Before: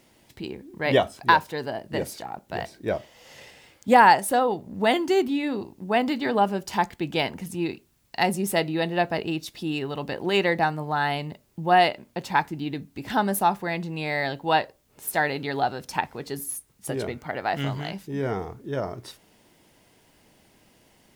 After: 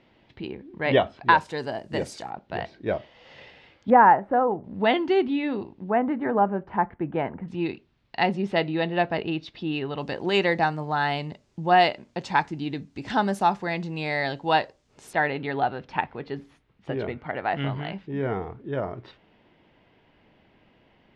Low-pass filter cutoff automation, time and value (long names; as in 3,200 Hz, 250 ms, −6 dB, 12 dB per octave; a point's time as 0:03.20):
low-pass filter 24 dB per octave
3,600 Hz
from 0:01.38 8,400 Hz
from 0:02.30 4,000 Hz
from 0:03.90 1,600 Hz
from 0:04.64 3,600 Hz
from 0:05.90 1,700 Hz
from 0:07.48 3,900 Hz
from 0:09.98 7,000 Hz
from 0:15.13 3,200 Hz